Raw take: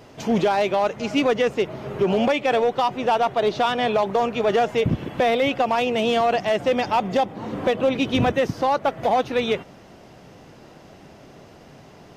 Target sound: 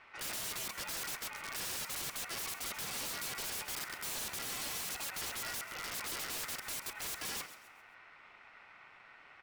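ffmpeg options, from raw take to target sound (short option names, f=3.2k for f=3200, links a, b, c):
-filter_complex "[0:a]acrossover=split=500[a][b];[b]adynamicsmooth=sensitivity=1.5:basefreq=2.2k[c];[a][c]amix=inputs=2:normalize=0,aeval=exprs='val(0)*sin(2*PI*1300*n/s)':c=same,aeval=exprs='(mod(18.8*val(0)+1,2)-1)/18.8':c=same,asplit=5[d][e][f][g][h];[e]adelay=173,afreqshift=67,volume=-14dB[i];[f]adelay=346,afreqshift=134,volume=-22.6dB[j];[g]adelay=519,afreqshift=201,volume=-31.3dB[k];[h]adelay=692,afreqshift=268,volume=-39.9dB[l];[d][i][j][k][l]amix=inputs=5:normalize=0,asetrate=56889,aresample=44100,volume=-8.5dB"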